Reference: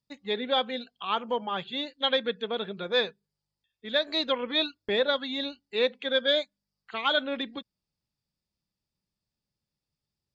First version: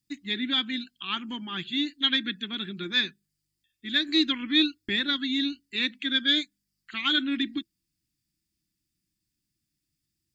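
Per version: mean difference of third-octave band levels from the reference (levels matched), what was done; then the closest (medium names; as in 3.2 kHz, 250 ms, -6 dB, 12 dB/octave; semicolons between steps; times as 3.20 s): 5.0 dB: FFT filter 230 Hz 0 dB, 330 Hz +9 dB, 470 Hz -28 dB, 820 Hz -19 dB, 1.8 kHz +1 dB, 4.5 kHz 0 dB, 7.4 kHz +7 dB; trim +3.5 dB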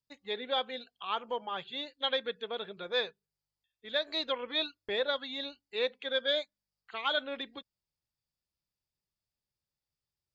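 1.0 dB: peaking EQ 210 Hz -8 dB 1.1 oct; trim -5 dB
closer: second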